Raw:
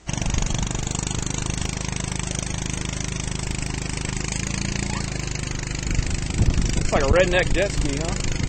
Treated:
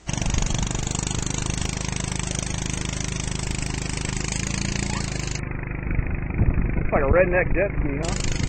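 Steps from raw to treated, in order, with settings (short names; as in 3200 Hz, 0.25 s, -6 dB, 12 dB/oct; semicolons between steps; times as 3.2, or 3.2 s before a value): 5.39–8.03 Chebyshev low-pass 2500 Hz, order 8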